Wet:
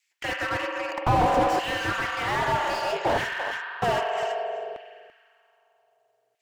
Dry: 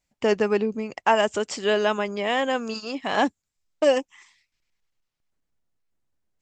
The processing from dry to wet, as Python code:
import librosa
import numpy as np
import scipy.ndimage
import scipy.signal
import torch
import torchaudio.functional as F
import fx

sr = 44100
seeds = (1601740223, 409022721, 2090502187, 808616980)

p1 = x * np.sin(2.0 * np.pi * 120.0 * np.arange(len(x)) / sr)
p2 = fx.rev_spring(p1, sr, rt60_s=2.5, pass_ms=(43,), chirp_ms=40, drr_db=7.0)
p3 = fx.filter_lfo_highpass(p2, sr, shape='saw_down', hz=0.63, low_hz=500.0, high_hz=2300.0, q=1.8)
p4 = p3 + fx.echo_single(p3, sr, ms=338, db=-14.5, dry=0)
p5 = fx.slew_limit(p4, sr, full_power_hz=33.0)
y = F.gain(torch.from_numpy(p5), 8.0).numpy()